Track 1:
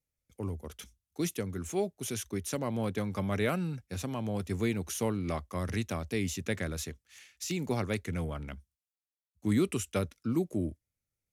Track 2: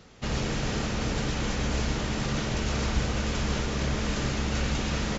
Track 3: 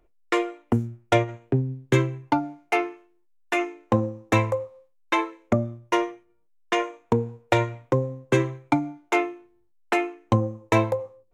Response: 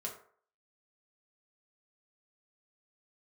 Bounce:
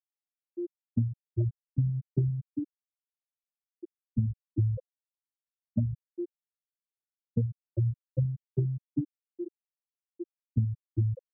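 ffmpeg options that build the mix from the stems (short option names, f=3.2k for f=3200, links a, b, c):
-filter_complex "[0:a]lowpass=f=1.3k:p=1,adynamicequalizer=threshold=0.00501:dfrequency=320:dqfactor=1.9:tfrequency=320:tqfactor=1.9:attack=5:release=100:ratio=0.375:range=3.5:mode=cutabove:tftype=bell,volume=-8dB,asplit=3[a][b][c];[b]volume=-22.5dB[d];[1:a]adelay=1200,volume=-1.5dB[e];[2:a]equalizer=f=110:t=o:w=2.5:g=15,adelay=250,volume=-12.5dB,asplit=2[f][g];[g]volume=-15dB[h];[c]apad=whole_len=281532[i];[e][i]sidechaincompress=threshold=-41dB:ratio=8:attack=26:release=155[j];[a][j]amix=inputs=2:normalize=0,lowpass=f=1.9k:p=1,alimiter=level_in=3.5dB:limit=-24dB:level=0:latency=1:release=494,volume=-3.5dB,volume=0dB[k];[3:a]atrim=start_sample=2205[l];[d][h]amix=inputs=2:normalize=0[m];[m][l]afir=irnorm=-1:irlink=0[n];[f][k][n]amix=inputs=3:normalize=0,afftfilt=real='re*gte(hypot(re,im),0.398)':imag='im*gte(hypot(re,im),0.398)':win_size=1024:overlap=0.75,acompressor=threshold=-23dB:ratio=6"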